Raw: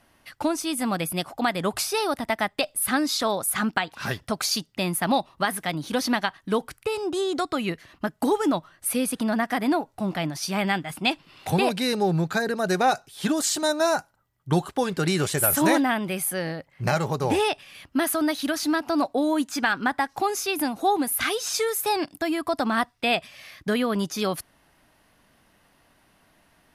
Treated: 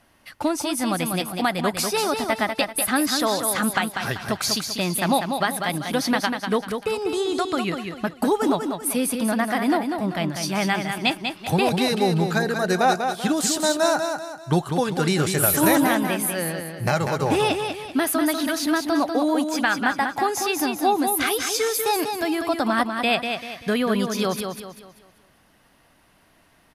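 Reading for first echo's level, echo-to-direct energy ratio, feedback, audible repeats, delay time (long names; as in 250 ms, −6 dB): −6.0 dB, −5.5 dB, 38%, 4, 194 ms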